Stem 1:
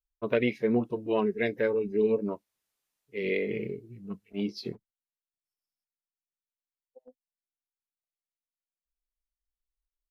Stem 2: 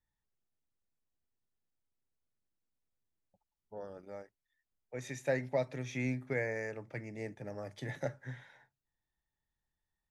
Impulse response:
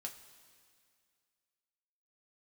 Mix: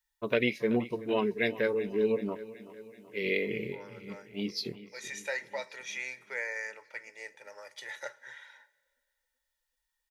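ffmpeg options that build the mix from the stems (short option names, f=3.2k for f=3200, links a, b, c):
-filter_complex "[0:a]volume=-3dB,asplit=3[a][b][c];[b]volume=-22dB[d];[c]volume=-16.5dB[e];[1:a]highpass=1k,highshelf=f=4.7k:g=-10.5,aecho=1:1:2.1:0.59,volume=0dB,asplit=3[f][g][h];[g]volume=-6dB[i];[h]apad=whole_len=445615[j];[a][j]sidechaincompress=threshold=-56dB:ratio=8:attack=16:release=464[k];[2:a]atrim=start_sample=2205[l];[d][i]amix=inputs=2:normalize=0[m];[m][l]afir=irnorm=-1:irlink=0[n];[e]aecho=0:1:379|758|1137|1516|1895|2274|2653|3032|3411:1|0.58|0.336|0.195|0.113|0.0656|0.0381|0.0221|0.0128[o];[k][f][n][o]amix=inputs=4:normalize=0,highshelf=f=2.4k:g=11.5"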